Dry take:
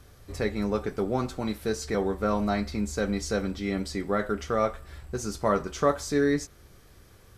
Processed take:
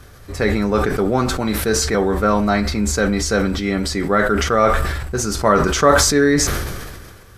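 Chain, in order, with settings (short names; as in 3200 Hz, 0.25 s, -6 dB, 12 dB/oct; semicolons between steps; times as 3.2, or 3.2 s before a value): bell 1500 Hz +4.5 dB 0.85 oct; sustainer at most 34 dB/s; gain +8.5 dB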